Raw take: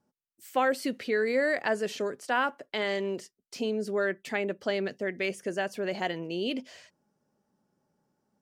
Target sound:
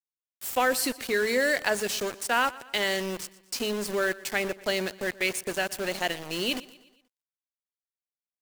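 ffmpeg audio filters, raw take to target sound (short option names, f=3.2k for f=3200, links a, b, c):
-filter_complex "[0:a]bandreject=f=56.13:t=h:w=4,bandreject=f=112.26:t=h:w=4,bandreject=f=168.39:t=h:w=4,bandreject=f=224.52:t=h:w=4,asetrate=42845,aresample=44100,atempo=1.0293,crystalizer=i=4.5:c=0,aeval=exprs='val(0)*gte(abs(val(0)),0.0251)':c=same,asplit=2[a][b];[b]aecho=0:1:120|240|360|480:0.1|0.05|0.025|0.0125[c];[a][c]amix=inputs=2:normalize=0"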